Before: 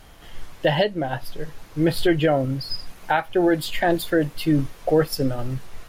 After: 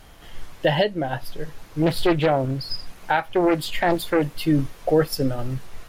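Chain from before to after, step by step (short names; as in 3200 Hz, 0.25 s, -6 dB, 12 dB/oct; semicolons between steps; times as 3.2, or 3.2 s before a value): 1.82–4.22 Doppler distortion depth 0.46 ms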